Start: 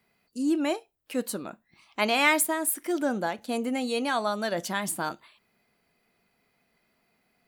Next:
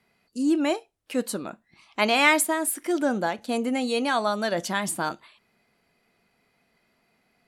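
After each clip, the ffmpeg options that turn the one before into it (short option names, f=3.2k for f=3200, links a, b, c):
-af "lowpass=11k,volume=3dB"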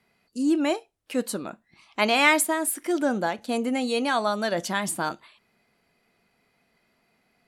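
-af anull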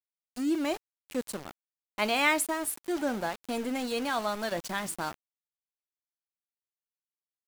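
-af "aeval=exprs='val(0)*gte(abs(val(0)),0.0299)':c=same,volume=-6dB"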